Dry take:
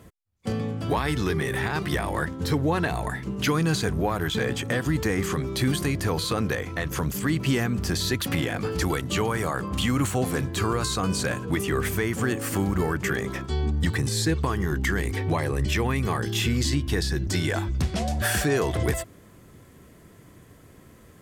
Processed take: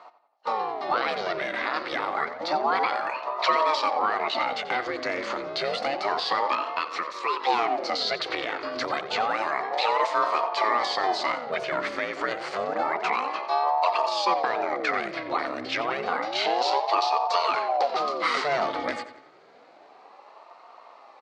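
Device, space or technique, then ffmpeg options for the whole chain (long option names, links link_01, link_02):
voice changer toy: -filter_complex "[0:a]asettb=1/sr,asplit=3[link_01][link_02][link_03];[link_01]atrim=end=6.794[link_04];[link_02]atrim=start=6.79:end=7.45,asetpts=PTS-STARTPTS,afade=type=in:duration=0.004:curve=qsin,afade=type=out:start_time=0.656:duration=0.004:curve=qsin,highpass=frequency=250:width=0.5412,highpass=frequency=250:width=1.3066[link_05];[link_03]atrim=start=7.446[link_06];[link_04][link_05]acrossfade=duration=0.004:curve1=hsin:curve2=qsin[link_07];[link_07][link_06]acrossfade=duration=0.004:curve1=qsin:curve2=hsin,asplit=2[link_08][link_09];[link_09]adelay=89,lowpass=frequency=4600:poles=1,volume=-12dB,asplit=2[link_10][link_11];[link_11]adelay=89,lowpass=frequency=4600:poles=1,volume=0.49,asplit=2[link_12][link_13];[link_13]adelay=89,lowpass=frequency=4600:poles=1,volume=0.49,asplit=2[link_14][link_15];[link_15]adelay=89,lowpass=frequency=4600:poles=1,volume=0.49,asplit=2[link_16][link_17];[link_17]adelay=89,lowpass=frequency=4600:poles=1,volume=0.49[link_18];[link_08][link_10][link_12][link_14][link_16][link_18]amix=inputs=6:normalize=0,aeval=exprs='val(0)*sin(2*PI*490*n/s+490*0.65/0.29*sin(2*PI*0.29*n/s))':channel_layout=same,highpass=410,equalizer=frequency=750:width_type=q:width=4:gain=6,equalizer=frequency=1200:width_type=q:width=4:gain=9,equalizer=frequency=2100:width_type=q:width=4:gain=4,equalizer=frequency=4400:width_type=q:width=4:gain=9,lowpass=frequency=5000:width=0.5412,lowpass=frequency=5000:width=1.3066"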